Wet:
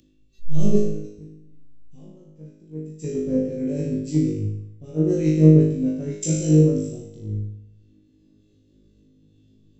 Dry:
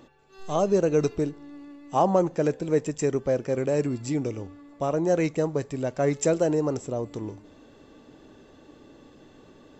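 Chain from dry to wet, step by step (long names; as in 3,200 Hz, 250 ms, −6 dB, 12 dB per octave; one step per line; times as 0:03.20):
drawn EQ curve 240 Hz 0 dB, 480 Hz −9 dB, 890 Hz −27 dB, 3,000 Hz −7 dB
0:00.78–0:03.02: downward compressor 2.5 to 1, threshold −42 dBFS, peak gain reduction 12.5 dB
flutter between parallel walls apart 3.3 metres, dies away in 1.2 s
upward compression, threshold −33 dBFS
low-shelf EQ 370 Hz +6.5 dB
multiband upward and downward expander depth 100%
level −4 dB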